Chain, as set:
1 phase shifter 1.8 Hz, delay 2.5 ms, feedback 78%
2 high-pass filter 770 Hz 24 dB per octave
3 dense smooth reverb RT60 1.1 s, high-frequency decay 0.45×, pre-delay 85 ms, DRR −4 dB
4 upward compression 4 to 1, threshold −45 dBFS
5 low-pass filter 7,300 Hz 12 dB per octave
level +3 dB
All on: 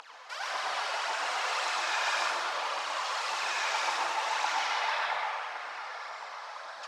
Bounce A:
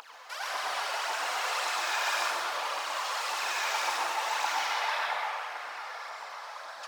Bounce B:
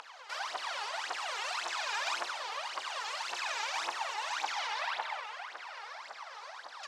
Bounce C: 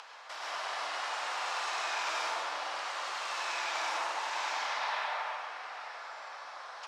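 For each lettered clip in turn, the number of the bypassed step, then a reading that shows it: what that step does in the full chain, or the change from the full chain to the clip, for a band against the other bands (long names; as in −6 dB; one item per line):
5, 8 kHz band +2.5 dB
3, 4 kHz band +2.0 dB
1, change in integrated loudness −4.0 LU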